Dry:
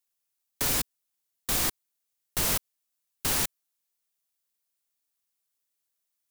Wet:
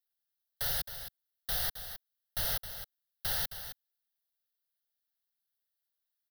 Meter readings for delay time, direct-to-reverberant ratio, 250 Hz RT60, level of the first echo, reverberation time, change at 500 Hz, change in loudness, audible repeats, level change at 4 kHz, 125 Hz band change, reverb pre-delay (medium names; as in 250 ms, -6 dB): 266 ms, no reverb, no reverb, -10.5 dB, no reverb, -8.5 dB, -7.0 dB, 1, -4.5 dB, -6.5 dB, no reverb